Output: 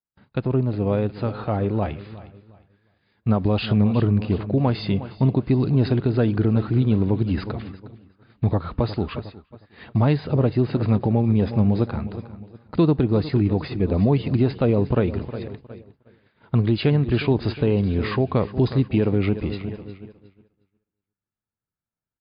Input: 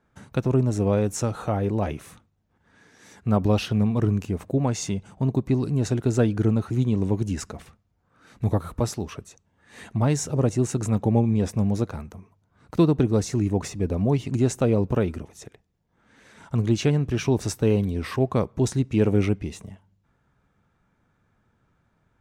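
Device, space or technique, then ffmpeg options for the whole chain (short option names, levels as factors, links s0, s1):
low-bitrate web radio: -filter_complex "[0:a]aecho=1:1:360|720|1080|1440|1800:0.168|0.0856|0.0437|0.0223|0.0114,agate=range=0.0224:threshold=0.0141:ratio=3:detection=peak,asettb=1/sr,asplit=3[s0][s1][s2];[s0]atrim=end=1.874[s3];[s1]atrim=start=1.87:end=3.29,asetpts=PTS-STARTPTS,afade=t=in:d=0.004:c=qsin,afade=t=out:st=1.416:d=0.004:c=qsin,equalizer=f=560:w=0.44:g=-5[s4];[s2]atrim=start=3.286[s5];[s3][s4]acrossfade=d=0.004:c1=hsin:c2=qsin[s6];[s6][s5]acrossfade=d=0.004:c1=qsin:c2=hsin,dynaudnorm=f=920:g=5:m=2.24,alimiter=limit=0.335:level=0:latency=1:release=163" -ar 11025 -c:a libmp3lame -b:a 48k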